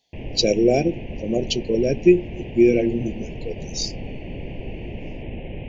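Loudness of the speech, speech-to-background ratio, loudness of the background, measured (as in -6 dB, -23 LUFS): -21.0 LUFS, 14.0 dB, -35.0 LUFS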